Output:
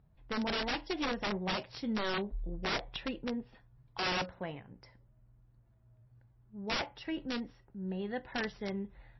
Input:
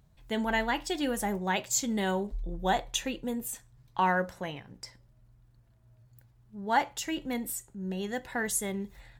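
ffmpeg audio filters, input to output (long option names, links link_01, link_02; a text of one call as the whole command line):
ffmpeg -i in.wav -af "adynamicsmooth=sensitivity=2:basefreq=2300,aeval=exprs='(mod(15.8*val(0)+1,2)-1)/15.8':channel_layout=same,volume=-2.5dB" -ar 16000 -c:a libmp3lame -b:a 24k out.mp3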